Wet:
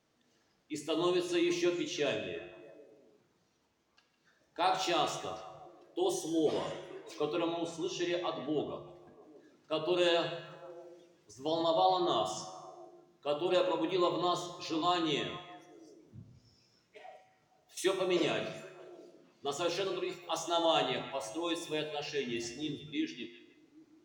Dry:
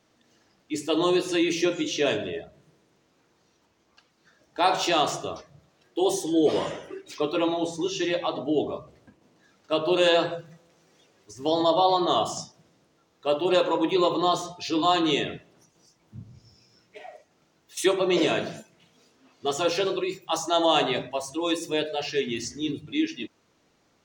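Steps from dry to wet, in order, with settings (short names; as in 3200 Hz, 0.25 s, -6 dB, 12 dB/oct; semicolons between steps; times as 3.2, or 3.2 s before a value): resonator 50 Hz, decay 0.89 s, harmonics odd, mix 70%; delay with a stepping band-pass 0.156 s, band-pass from 2600 Hz, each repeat -0.7 oct, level -11.5 dB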